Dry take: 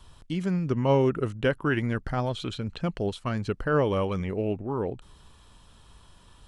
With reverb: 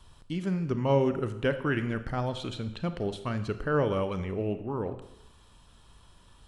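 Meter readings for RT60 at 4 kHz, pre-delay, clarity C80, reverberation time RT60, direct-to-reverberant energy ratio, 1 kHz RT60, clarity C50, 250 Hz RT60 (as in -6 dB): 0.80 s, 28 ms, 14.0 dB, 0.85 s, 10.0 dB, 0.90 s, 12.0 dB, 0.75 s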